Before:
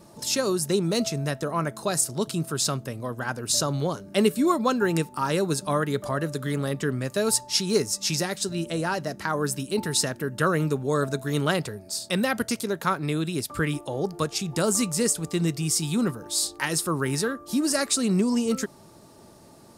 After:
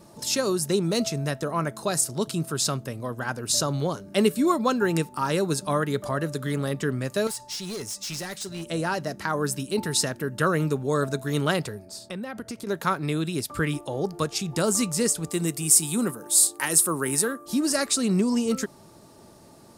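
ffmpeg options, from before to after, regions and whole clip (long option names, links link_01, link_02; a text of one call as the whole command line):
ffmpeg -i in.wav -filter_complex "[0:a]asettb=1/sr,asplit=3[link_01][link_02][link_03];[link_01]atrim=end=7.274[link_04];[link_02]atrim=start=7.27:end=8.7,asetpts=PTS-STARTPTS,afade=type=in:duration=0.004:curve=qsin,afade=type=out:start_time=1.426:duration=0.004:curve=qsin,equalizer=frequency=280:width=0.32:gain=-5.5,acompressor=threshold=-25dB:ratio=10:attack=3.2:release=140:knee=1:detection=peak,asoftclip=type=hard:threshold=-29.5dB[link_05];[link_03]atrim=start=8.696[link_06];[link_04][link_05]acrossfade=duration=0.004:curve1=hsin:curve2=qsin[link_07];[link_07][link_06]acrossfade=duration=0.004:curve1=qsin:curve2=hsin,asettb=1/sr,asplit=3[link_08][link_09][link_10];[link_08]atrim=end=11.854[link_11];[link_09]atrim=start=11.85:end=12.67,asetpts=PTS-STARTPTS,afade=type=in:duration=0.004:curve=qsin,afade=type=out:start_time=0.816:duration=0.004:curve=qsin,highshelf=frequency=2500:gain=-10.5,acompressor=threshold=-30dB:ratio=12:attack=3.2:release=140:knee=1:detection=peak[link_12];[link_10]atrim=start=12.666[link_13];[link_11][link_12]acrossfade=duration=0.004:curve1=hsin:curve2=qsin[link_14];[link_14][link_13]acrossfade=duration=0.004:curve1=qsin:curve2=hsin,asettb=1/sr,asplit=3[link_15][link_16][link_17];[link_15]atrim=end=15.314[link_18];[link_16]atrim=start=15.31:end=17.46,asetpts=PTS-STARTPTS,afade=type=in:duration=0.004:curve=qsin,afade=type=out:start_time=2.146:duration=0.004:curve=qsin,highpass=180,highshelf=frequency=6800:width_type=q:width=1.5:gain=8.5[link_19];[link_17]atrim=start=17.456[link_20];[link_18][link_19]acrossfade=duration=0.004:curve1=hsin:curve2=qsin[link_21];[link_21][link_20]acrossfade=duration=0.004:curve1=qsin:curve2=hsin" out.wav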